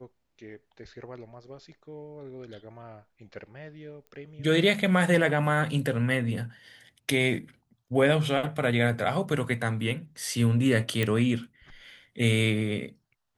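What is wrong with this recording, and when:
4.07 s: pop -35 dBFS
11.03 s: pop -13 dBFS

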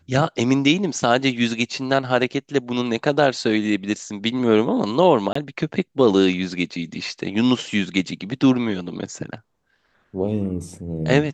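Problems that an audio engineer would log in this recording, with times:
5.33–5.35 s: dropout 24 ms

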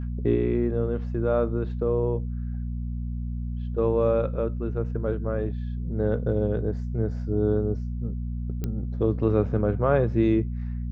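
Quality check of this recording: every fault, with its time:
hum 60 Hz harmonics 4 -30 dBFS
8.64 s: pop -17 dBFS

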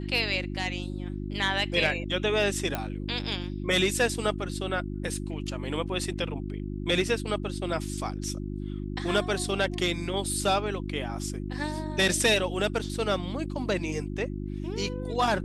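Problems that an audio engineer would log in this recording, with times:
hum 50 Hz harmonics 7 -34 dBFS
2.75 s: pop -14 dBFS

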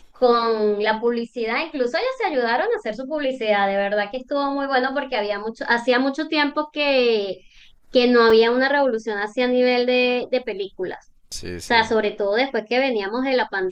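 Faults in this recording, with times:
8.30 s: dropout 3.3 ms

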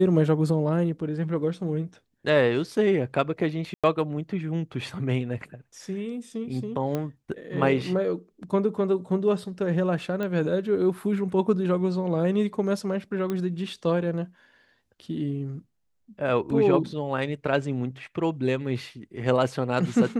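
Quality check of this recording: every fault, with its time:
3.74–3.84 s: dropout 96 ms
6.95 s: pop -16 dBFS
10.23 s: pop -19 dBFS
13.30 s: pop -17 dBFS

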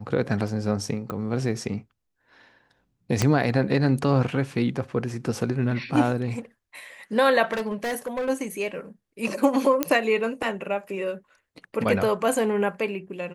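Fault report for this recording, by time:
1.10 s: pop -19 dBFS
3.22 s: pop -7 dBFS
7.52–8.30 s: clipped -24 dBFS
9.83 s: pop -6 dBFS

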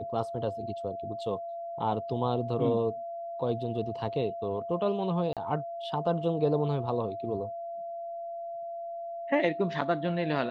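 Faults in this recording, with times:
whine 680 Hz -35 dBFS
5.33–5.37 s: dropout 37 ms

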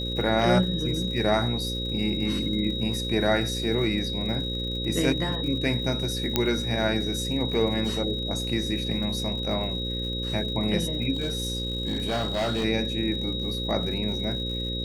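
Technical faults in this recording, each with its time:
buzz 60 Hz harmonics 9 -32 dBFS
crackle 120 per s -36 dBFS
whine 3.8 kHz -31 dBFS
6.36 s: pop -6 dBFS
11.13–12.65 s: clipped -22.5 dBFS

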